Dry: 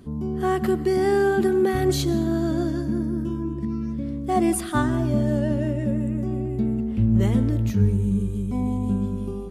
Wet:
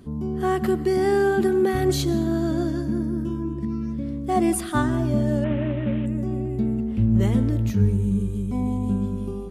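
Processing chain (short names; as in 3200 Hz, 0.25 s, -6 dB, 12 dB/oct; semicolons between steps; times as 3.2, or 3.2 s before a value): 5.44–6.06 CVSD 16 kbps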